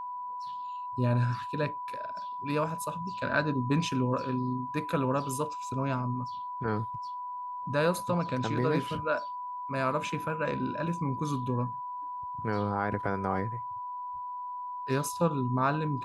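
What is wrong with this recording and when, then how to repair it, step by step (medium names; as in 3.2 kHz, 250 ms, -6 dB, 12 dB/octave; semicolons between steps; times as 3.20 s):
whine 990 Hz -35 dBFS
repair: band-stop 990 Hz, Q 30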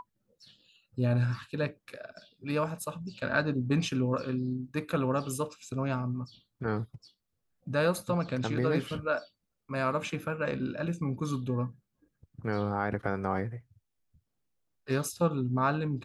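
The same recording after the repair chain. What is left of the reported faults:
nothing left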